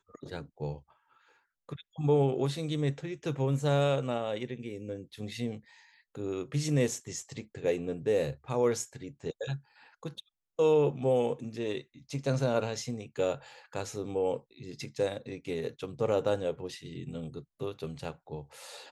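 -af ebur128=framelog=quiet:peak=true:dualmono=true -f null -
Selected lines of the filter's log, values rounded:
Integrated loudness:
  I:         -29.3 LUFS
  Threshold: -40.1 LUFS
Loudness range:
  LRA:         4.7 LU
  Threshold: -49.7 LUFS
  LRA low:   -32.2 LUFS
  LRA high:  -27.5 LUFS
True peak:
  Peak:      -14.8 dBFS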